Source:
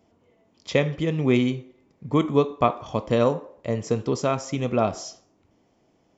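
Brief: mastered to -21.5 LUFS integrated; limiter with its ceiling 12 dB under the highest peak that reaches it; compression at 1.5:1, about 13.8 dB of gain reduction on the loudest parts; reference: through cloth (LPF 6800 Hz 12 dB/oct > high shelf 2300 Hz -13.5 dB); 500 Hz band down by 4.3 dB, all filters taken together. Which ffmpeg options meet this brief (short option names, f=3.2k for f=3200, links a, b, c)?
-af "equalizer=f=500:t=o:g=-4.5,acompressor=threshold=-56dB:ratio=1.5,alimiter=level_in=9dB:limit=-24dB:level=0:latency=1,volume=-9dB,lowpass=6.8k,highshelf=f=2.3k:g=-13.5,volume=23.5dB"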